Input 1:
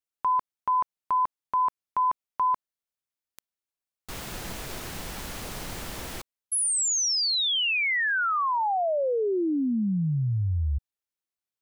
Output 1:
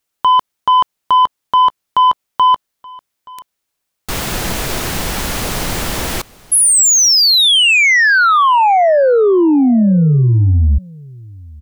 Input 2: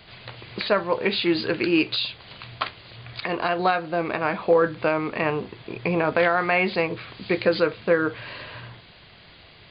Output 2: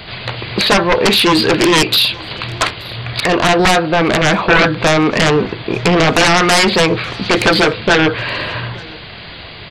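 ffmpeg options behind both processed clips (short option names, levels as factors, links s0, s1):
-af "aeval=exprs='0.422*(cos(1*acos(clip(val(0)/0.422,-1,1)))-cos(1*PI/2))+0.0211*(cos(2*acos(clip(val(0)/0.422,-1,1)))-cos(2*PI/2))+0.15*(cos(3*acos(clip(val(0)/0.422,-1,1)))-cos(3*PI/2))+0.211*(cos(7*acos(clip(val(0)/0.422,-1,1)))-cos(7*PI/2))':c=same,aecho=1:1:876:0.0668,volume=2"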